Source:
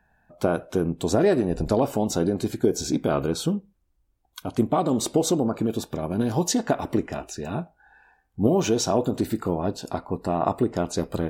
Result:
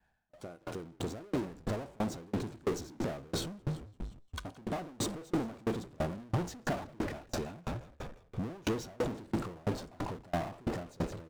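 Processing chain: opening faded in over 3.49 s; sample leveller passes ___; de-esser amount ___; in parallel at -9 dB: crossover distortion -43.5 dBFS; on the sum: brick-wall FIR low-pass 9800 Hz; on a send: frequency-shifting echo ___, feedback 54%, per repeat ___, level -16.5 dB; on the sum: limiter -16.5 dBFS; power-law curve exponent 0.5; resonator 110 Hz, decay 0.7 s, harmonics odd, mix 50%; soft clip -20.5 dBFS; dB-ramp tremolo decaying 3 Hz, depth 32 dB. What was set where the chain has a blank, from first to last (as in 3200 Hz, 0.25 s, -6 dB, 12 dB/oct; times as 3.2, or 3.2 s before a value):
3, 90%, 0.172 s, -51 Hz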